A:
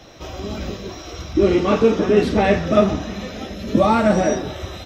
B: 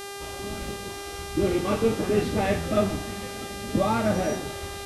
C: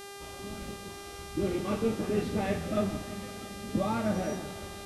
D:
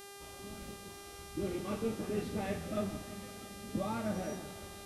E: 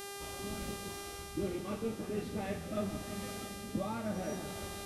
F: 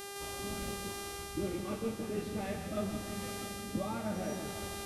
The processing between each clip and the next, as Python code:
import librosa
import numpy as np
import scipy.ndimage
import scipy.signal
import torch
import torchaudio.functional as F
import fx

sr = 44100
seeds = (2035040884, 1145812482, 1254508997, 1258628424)

y1 = fx.octave_divider(x, sr, octaves=1, level_db=-6.0)
y1 = fx.dmg_buzz(y1, sr, base_hz=400.0, harmonics=31, level_db=-29.0, tilt_db=-4, odd_only=False)
y1 = F.gain(torch.from_numpy(y1), -8.5).numpy()
y2 = fx.peak_eq(y1, sr, hz=200.0, db=4.0, octaves=0.71)
y2 = fx.echo_bbd(y2, sr, ms=169, stages=4096, feedback_pct=66, wet_db=-15.5)
y2 = F.gain(torch.from_numpy(y2), -7.5).numpy()
y3 = fx.high_shelf(y2, sr, hz=9200.0, db=7.0)
y3 = F.gain(torch.from_numpy(y3), -6.5).numpy()
y4 = fx.rider(y3, sr, range_db=5, speed_s=0.5)
y4 = F.gain(torch.from_numpy(y4), 1.0).numpy()
y5 = y4 + 10.0 ** (-9.0 / 20.0) * np.pad(y4, (int(160 * sr / 1000.0), 0))[:len(y4)]